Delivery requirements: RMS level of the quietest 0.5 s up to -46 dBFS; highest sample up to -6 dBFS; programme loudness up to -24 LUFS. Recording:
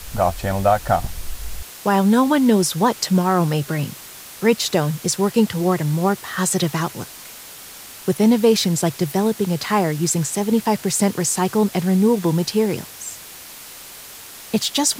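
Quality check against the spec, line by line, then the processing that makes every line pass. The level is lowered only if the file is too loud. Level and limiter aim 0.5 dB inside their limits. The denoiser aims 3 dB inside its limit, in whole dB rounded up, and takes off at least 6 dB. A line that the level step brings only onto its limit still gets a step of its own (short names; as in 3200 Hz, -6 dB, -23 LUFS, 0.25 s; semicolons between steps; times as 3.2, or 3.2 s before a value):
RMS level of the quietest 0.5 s -39 dBFS: fail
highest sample -5.0 dBFS: fail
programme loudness -19.5 LUFS: fail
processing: denoiser 6 dB, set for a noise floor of -39 dBFS; gain -5 dB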